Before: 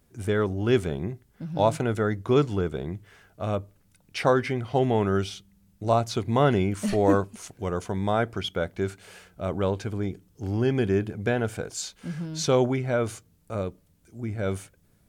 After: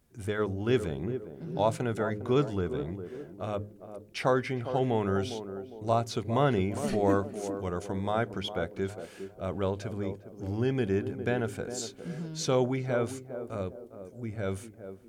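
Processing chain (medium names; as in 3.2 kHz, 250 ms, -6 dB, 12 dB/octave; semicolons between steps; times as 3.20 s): de-hum 104.3 Hz, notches 5; on a send: band-passed feedback delay 406 ms, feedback 45%, band-pass 390 Hz, level -8.5 dB; on the sum: trim -4.5 dB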